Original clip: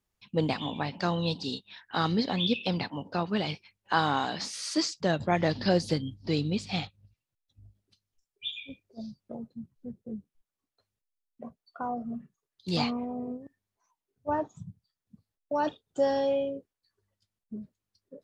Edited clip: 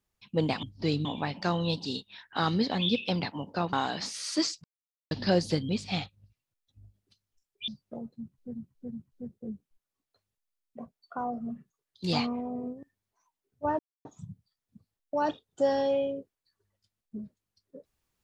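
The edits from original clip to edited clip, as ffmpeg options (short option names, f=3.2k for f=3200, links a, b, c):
-filter_complex "[0:a]asplit=11[a][b][c][d][e][f][g][h][i][j][k];[a]atrim=end=0.632[l];[b]atrim=start=6.078:end=6.502[m];[c]atrim=start=0.628:end=3.312[n];[d]atrim=start=4.118:end=5.03,asetpts=PTS-STARTPTS,afade=t=out:st=0.908:d=0.004:c=hsin[o];[e]atrim=start=5.03:end=5.5,asetpts=PTS-STARTPTS,volume=0[p];[f]atrim=start=5.5:end=6.082,asetpts=PTS-STARTPTS,afade=t=in:d=0.004:c=hsin[q];[g]atrim=start=6.498:end=8.492[r];[h]atrim=start=9.058:end=9.932[s];[i]atrim=start=9.558:end=9.932[t];[j]atrim=start=9.558:end=14.43,asetpts=PTS-STARTPTS,afade=t=out:st=4.868:d=0.004:c=hsin,apad=pad_dur=0.26[u];[k]atrim=start=14.43,asetpts=PTS-STARTPTS,afade=t=in:d=0.004:c=hsin[v];[l][m]acrossfade=d=0.004:c1=hsin:c2=hsin[w];[w][n]acrossfade=d=0.004:c1=hsin:c2=hsin[x];[o][p][q]concat=n=3:v=0:a=1[y];[x][y]acrossfade=d=0.004:c1=hsin:c2=hsin[z];[z][r]acrossfade=d=0.004:c1=hsin:c2=hsin[aa];[aa][s]acrossfade=d=0.004:c1=hsin:c2=hsin[ab];[ab][t]acrossfade=d=0.004:c1=hsin:c2=hsin[ac];[u][v]concat=n=2:v=0:a=1[ad];[ac][ad]acrossfade=d=0.004:c1=hsin:c2=hsin"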